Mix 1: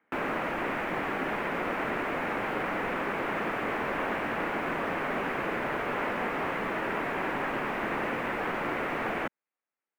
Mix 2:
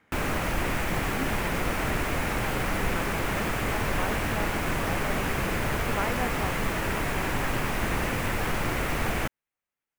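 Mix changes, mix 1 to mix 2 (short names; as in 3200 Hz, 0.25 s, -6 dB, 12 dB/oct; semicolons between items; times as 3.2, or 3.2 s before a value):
speech +6.5 dB; master: remove three-band isolator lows -22 dB, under 200 Hz, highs -20 dB, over 2700 Hz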